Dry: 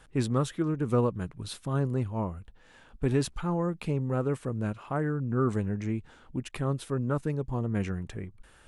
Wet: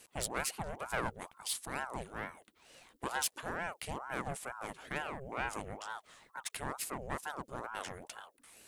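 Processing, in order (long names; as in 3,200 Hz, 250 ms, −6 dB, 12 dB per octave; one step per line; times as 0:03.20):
one-sided soft clipper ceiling −30 dBFS
RIAA equalisation recording
ring modulator whose carrier an LFO sweeps 740 Hz, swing 65%, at 2.2 Hz
level −1.5 dB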